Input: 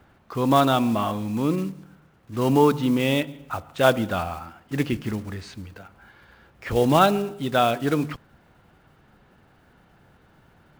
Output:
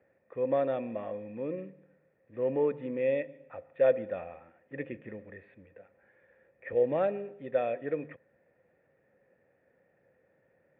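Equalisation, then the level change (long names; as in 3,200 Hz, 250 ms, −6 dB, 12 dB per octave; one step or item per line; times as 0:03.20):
formant resonators in series e
high-pass filter 100 Hz
+1.5 dB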